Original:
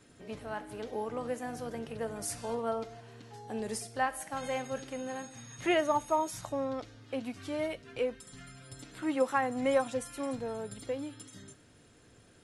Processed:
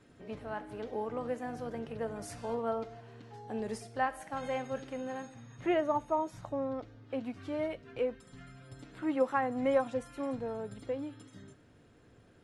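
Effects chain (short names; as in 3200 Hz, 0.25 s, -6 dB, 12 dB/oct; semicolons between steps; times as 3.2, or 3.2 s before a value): LPF 2300 Hz 6 dB/oct, from 5.34 s 1000 Hz, from 7.1 s 1700 Hz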